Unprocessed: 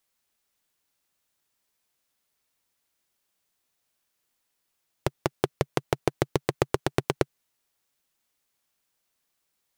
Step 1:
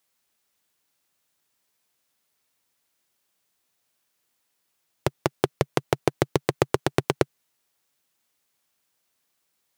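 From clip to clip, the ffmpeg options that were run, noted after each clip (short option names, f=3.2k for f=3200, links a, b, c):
-af "highpass=77,volume=3dB"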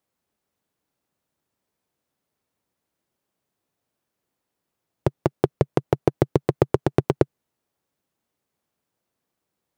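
-af "tiltshelf=f=1.1k:g=8,volume=-2.5dB"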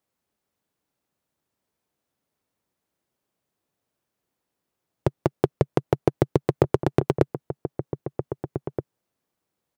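-filter_complex "[0:a]asplit=2[a][b];[b]adelay=1574,volume=-9dB,highshelf=f=4k:g=-35.4[c];[a][c]amix=inputs=2:normalize=0,volume=-1dB"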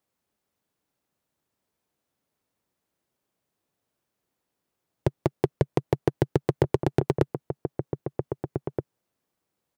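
-af "asoftclip=type=tanh:threshold=-8.5dB"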